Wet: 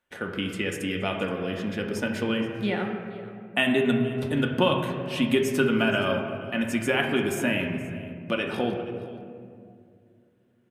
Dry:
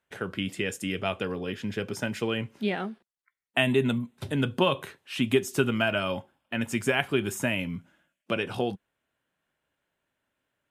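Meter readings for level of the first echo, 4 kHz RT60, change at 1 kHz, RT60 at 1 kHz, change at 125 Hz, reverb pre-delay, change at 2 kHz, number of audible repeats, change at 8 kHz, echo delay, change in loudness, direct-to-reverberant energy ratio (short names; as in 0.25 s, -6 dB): -19.0 dB, 1.3 s, +2.5 dB, 2.0 s, +1.0 dB, 3 ms, +2.5 dB, 1, -0.5 dB, 0.474 s, +2.0 dB, 1.5 dB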